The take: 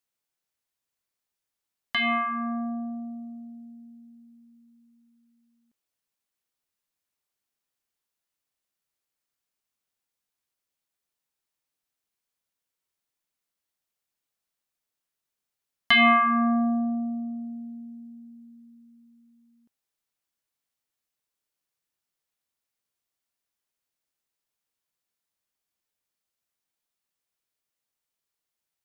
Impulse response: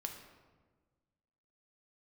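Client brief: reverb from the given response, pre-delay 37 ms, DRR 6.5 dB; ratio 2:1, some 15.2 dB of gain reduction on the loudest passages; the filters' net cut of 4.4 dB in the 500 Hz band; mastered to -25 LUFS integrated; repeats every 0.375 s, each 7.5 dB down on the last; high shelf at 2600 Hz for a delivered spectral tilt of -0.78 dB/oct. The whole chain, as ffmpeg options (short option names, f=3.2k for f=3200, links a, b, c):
-filter_complex "[0:a]equalizer=f=500:t=o:g=-9,highshelf=f=2.6k:g=3.5,acompressor=threshold=-44dB:ratio=2,aecho=1:1:375|750|1125|1500|1875:0.422|0.177|0.0744|0.0312|0.0131,asplit=2[a][b];[1:a]atrim=start_sample=2205,adelay=37[c];[b][c]afir=irnorm=-1:irlink=0,volume=-5dB[d];[a][d]amix=inputs=2:normalize=0,volume=12.5dB"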